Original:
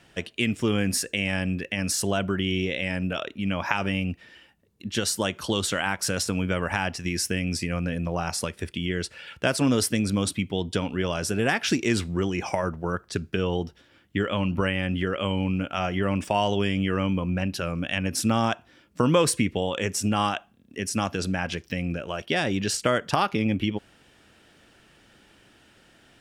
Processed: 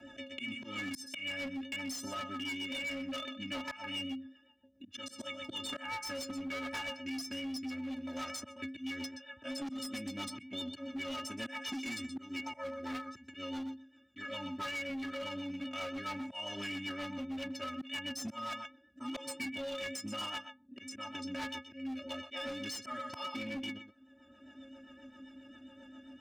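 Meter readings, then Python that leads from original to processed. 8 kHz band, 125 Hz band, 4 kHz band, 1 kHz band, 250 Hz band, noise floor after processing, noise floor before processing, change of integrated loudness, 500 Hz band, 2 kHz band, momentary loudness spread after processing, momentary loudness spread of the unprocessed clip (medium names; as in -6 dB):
-16.0 dB, -26.5 dB, -8.5 dB, -13.5 dB, -13.0 dB, -62 dBFS, -59 dBFS, -13.0 dB, -17.0 dB, -11.0 dB, 12 LU, 7 LU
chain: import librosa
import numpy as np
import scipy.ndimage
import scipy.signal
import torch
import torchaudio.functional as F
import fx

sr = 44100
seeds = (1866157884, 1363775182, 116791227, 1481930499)

p1 = fx.wiener(x, sr, points=41)
p2 = fx.stiff_resonator(p1, sr, f0_hz=260.0, decay_s=0.36, stiffness=0.03)
p3 = p2 + fx.echo_single(p2, sr, ms=124, db=-13.5, dry=0)
p4 = fx.auto_swell(p3, sr, attack_ms=339.0)
p5 = scipy.signal.sosfilt(scipy.signal.butter(2, 130.0, 'highpass', fs=sr, output='sos'), p4)
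p6 = fx.high_shelf(p5, sr, hz=5300.0, db=-5.5)
p7 = p6 + 0.95 * np.pad(p6, (int(3.1 * sr / 1000.0), 0))[:len(p6)]
p8 = fx.rider(p7, sr, range_db=10, speed_s=0.5)
p9 = p7 + (p8 * 10.0 ** (3.0 / 20.0))
p10 = fx.rotary(p9, sr, hz=7.5)
p11 = fx.peak_eq(p10, sr, hz=370.0, db=-11.5, octaves=1.4)
p12 = np.clip(p11, -10.0 ** (-39.5 / 20.0), 10.0 ** (-39.5 / 20.0))
p13 = fx.band_squash(p12, sr, depth_pct=70)
y = p13 * 10.0 ** (4.5 / 20.0)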